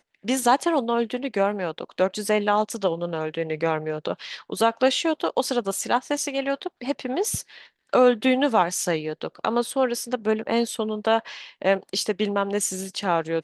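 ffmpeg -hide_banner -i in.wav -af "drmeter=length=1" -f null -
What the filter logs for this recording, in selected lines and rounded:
Channel 1: DR: 12.5
Overall DR: 12.5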